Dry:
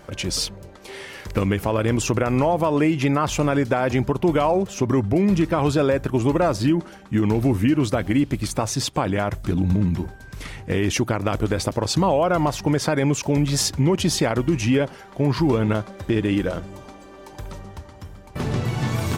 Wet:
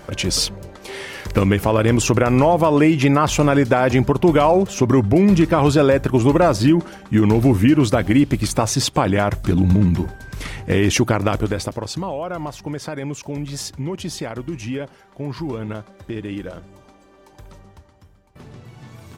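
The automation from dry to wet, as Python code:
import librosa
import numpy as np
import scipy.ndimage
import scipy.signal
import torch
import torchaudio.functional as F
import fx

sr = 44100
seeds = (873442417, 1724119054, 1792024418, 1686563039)

y = fx.gain(x, sr, db=fx.line((11.21, 5.0), (12.06, -7.5), (17.67, -7.5), (18.56, -17.0)))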